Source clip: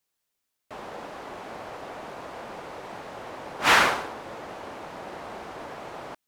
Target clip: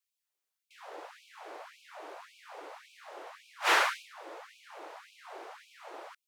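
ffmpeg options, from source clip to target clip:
ffmpeg -i in.wav -af "lowshelf=frequency=340:gain=4,afftfilt=real='re*gte(b*sr/1024,270*pow(2300/270,0.5+0.5*sin(2*PI*1.8*pts/sr)))':imag='im*gte(b*sr/1024,270*pow(2300/270,0.5+0.5*sin(2*PI*1.8*pts/sr)))':win_size=1024:overlap=0.75,volume=-7dB" out.wav

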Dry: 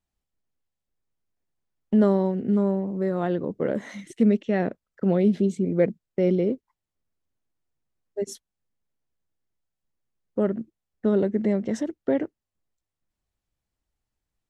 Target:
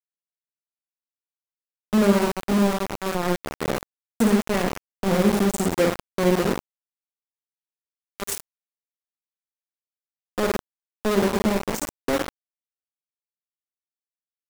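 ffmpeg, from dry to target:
ffmpeg -i in.wav -af "aexciter=amount=8.7:drive=3.5:freq=6500,aecho=1:1:50|107.5|173.6|249.7|337.1:0.631|0.398|0.251|0.158|0.1,aeval=exprs='val(0)*gte(abs(val(0)),0.106)':channel_layout=same" out.wav

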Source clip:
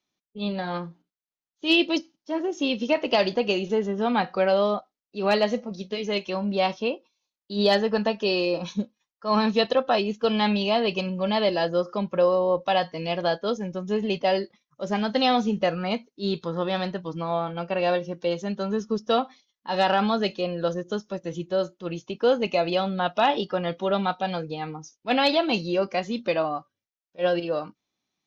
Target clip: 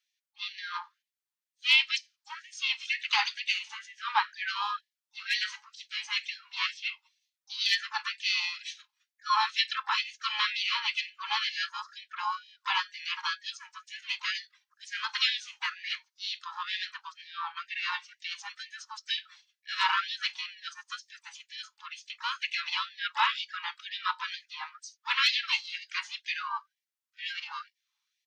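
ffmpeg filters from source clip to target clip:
ffmpeg -i in.wav -filter_complex "[0:a]asplit=3[link_01][link_02][link_03];[link_02]asetrate=35002,aresample=44100,atempo=1.25992,volume=-6dB[link_04];[link_03]asetrate=58866,aresample=44100,atempo=0.749154,volume=-14dB[link_05];[link_01][link_04][link_05]amix=inputs=3:normalize=0,afftfilt=real='re*gte(b*sr/1024,800*pow(1700/800,0.5+0.5*sin(2*PI*2.1*pts/sr)))':imag='im*gte(b*sr/1024,800*pow(1700/800,0.5+0.5*sin(2*PI*2.1*pts/sr)))':win_size=1024:overlap=0.75" out.wav

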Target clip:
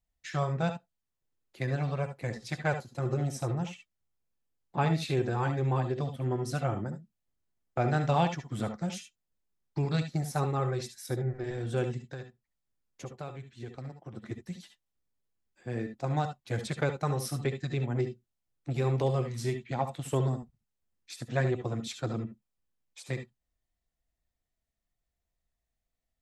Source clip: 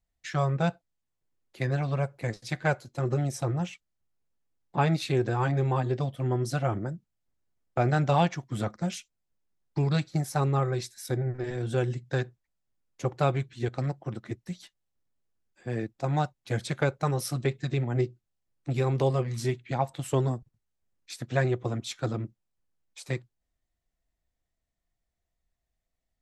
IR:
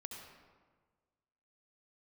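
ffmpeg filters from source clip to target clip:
-filter_complex "[0:a]asplit=3[link_01][link_02][link_03];[link_01]afade=type=out:start_time=12.03:duration=0.02[link_04];[link_02]acompressor=threshold=-40dB:ratio=2.5,afade=type=in:start_time=12.03:duration=0.02,afade=type=out:start_time=14.16:duration=0.02[link_05];[link_03]afade=type=in:start_time=14.16:duration=0.02[link_06];[link_04][link_05][link_06]amix=inputs=3:normalize=0[link_07];[1:a]atrim=start_sample=2205,atrim=end_sample=3528[link_08];[link_07][link_08]afir=irnorm=-1:irlink=0,volume=2.5dB"

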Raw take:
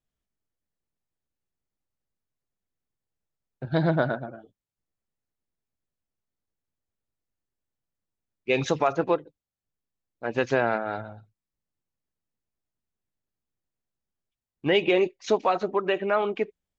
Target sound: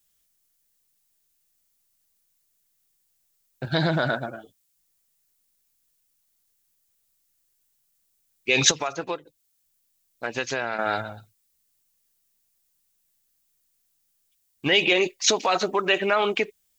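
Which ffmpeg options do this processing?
ffmpeg -i in.wav -filter_complex "[0:a]asettb=1/sr,asplit=3[link_01][link_02][link_03];[link_01]atrim=end=8.714[link_04];[link_02]atrim=start=8.71:end=10.79,asetpts=PTS-STARTPTS,afade=type=in:duration=0.004:curve=qsin,afade=type=out:start_time=2.076:duration=0.004:curve=qsin,acompressor=threshold=-34dB:ratio=3[link_05];[link_03]atrim=start=10.786[link_06];[link_04][link_05]acrossfade=duration=0.004:curve1=hsin:curve2=qsin[link_07];[link_07][link_06]acrossfade=duration=0.004:curve1=qsin:curve2=hsin,alimiter=limit=-18.5dB:level=0:latency=1:release=33,crystalizer=i=9.5:c=0,volume=2dB" out.wav

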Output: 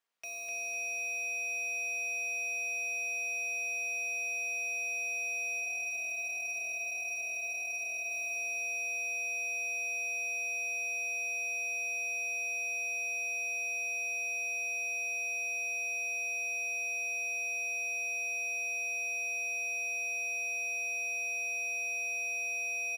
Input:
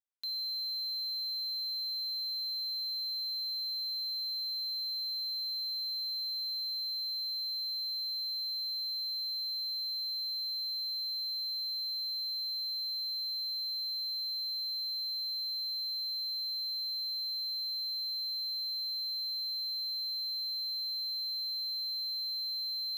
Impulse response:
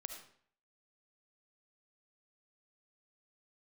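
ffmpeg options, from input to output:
-filter_complex "[0:a]aecho=1:1:4.3:0.83,asettb=1/sr,asplit=3[link_01][link_02][link_03];[link_01]atrim=end=5.604[link_04];[link_02]atrim=start=5.6:end=8.11,asetpts=PTS-STARTPTS,afade=type=in:duration=0.004:curve=qsin,afade=type=out:start_time=2.506:duration=0.004:curve=qsin,flanger=delay=15.5:depth=2.1:speed=1.6[link_05];[link_03]atrim=start=8.106[link_06];[link_04][link_05]acrossfade=duration=0.004:curve1=hsin:curve2=qsin[link_07];[link_07][link_06]acrossfade=duration=0.004:curve1=qsin:curve2=hsin,aeval=exprs='val(0)*sin(2*PI*1600*n/s)':channel_layout=same,asplit=2[link_08][link_09];[link_09]highpass=frequency=720:poles=1,volume=22dB,asoftclip=type=tanh:threshold=-31.5dB[link_10];[link_08][link_10]amix=inputs=2:normalize=0,lowpass=frequency=1900:poles=1,volume=-6dB,aecho=1:1:251|502|753|1004|1255|1506|1757:0.631|0.328|0.171|0.0887|0.0461|0.024|0.0125,volume=1.5dB"

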